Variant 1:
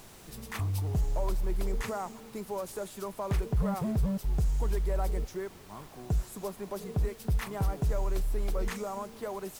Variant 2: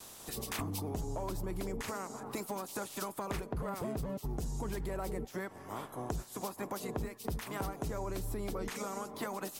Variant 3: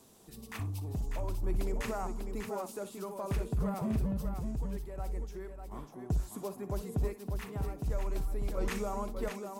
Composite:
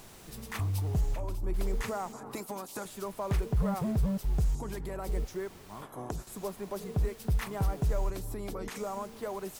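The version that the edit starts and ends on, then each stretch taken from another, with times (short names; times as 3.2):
1
1.14–1.54 from 3
2.13–2.85 from 2
4.55–5.09 from 2
5.82–6.27 from 2
8.1–8.78 from 2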